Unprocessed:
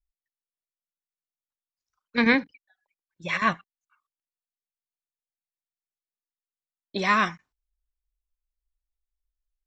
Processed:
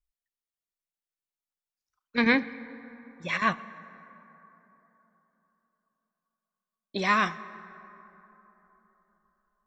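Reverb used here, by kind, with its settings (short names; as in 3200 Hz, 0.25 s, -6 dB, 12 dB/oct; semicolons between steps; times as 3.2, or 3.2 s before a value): plate-style reverb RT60 3.8 s, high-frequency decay 0.4×, DRR 15.5 dB; gain -2 dB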